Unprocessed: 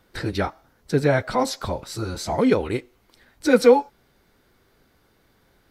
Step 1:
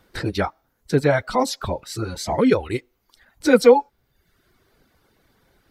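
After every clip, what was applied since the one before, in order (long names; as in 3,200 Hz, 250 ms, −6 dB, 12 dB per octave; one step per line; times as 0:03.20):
reverb reduction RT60 0.82 s
level +2 dB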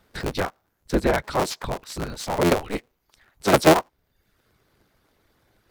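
sub-harmonics by changed cycles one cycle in 3, inverted
level −3 dB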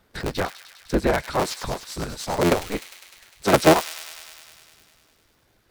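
delay with a high-pass on its return 101 ms, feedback 76%, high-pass 2,800 Hz, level −7.5 dB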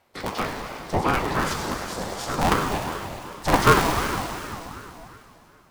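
dense smooth reverb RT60 3 s, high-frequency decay 0.85×, DRR 0.5 dB
ring modulator whose carrier an LFO sweeps 550 Hz, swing 40%, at 2.7 Hz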